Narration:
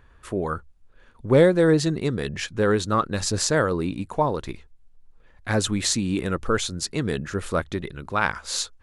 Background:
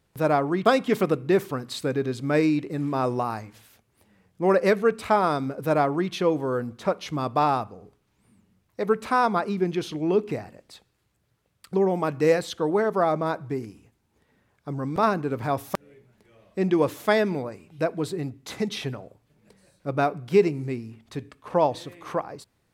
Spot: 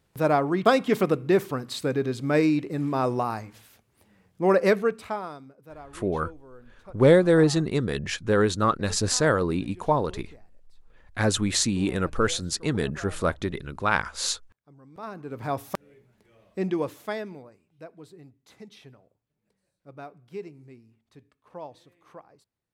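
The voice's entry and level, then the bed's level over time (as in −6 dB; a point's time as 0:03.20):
5.70 s, −0.5 dB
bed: 0:04.75 0 dB
0:05.59 −22.5 dB
0:14.86 −22.5 dB
0:15.49 −3 dB
0:16.58 −3 dB
0:17.67 −18.5 dB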